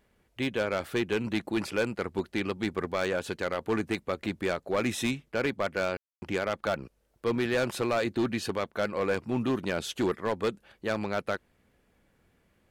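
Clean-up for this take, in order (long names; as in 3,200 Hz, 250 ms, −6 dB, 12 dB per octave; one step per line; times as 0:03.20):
clipped peaks rebuilt −21.5 dBFS
ambience match 0:05.97–0:06.22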